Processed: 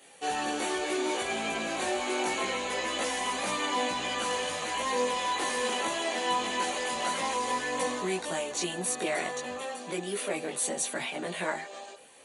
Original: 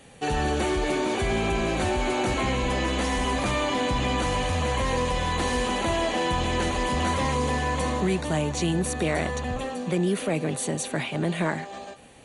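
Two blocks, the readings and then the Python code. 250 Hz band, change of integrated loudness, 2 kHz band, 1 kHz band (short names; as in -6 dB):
-9.5 dB, -4.5 dB, -2.5 dB, -3.0 dB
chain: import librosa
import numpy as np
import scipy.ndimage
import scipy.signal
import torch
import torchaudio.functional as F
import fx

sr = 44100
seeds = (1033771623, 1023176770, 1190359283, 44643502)

y = scipy.signal.sosfilt(scipy.signal.bessel(2, 420.0, 'highpass', norm='mag', fs=sr, output='sos'), x)
y = fx.high_shelf(y, sr, hz=6800.0, db=7.5)
y = fx.chorus_voices(y, sr, voices=4, hz=0.24, base_ms=19, depth_ms=2.9, mix_pct=50)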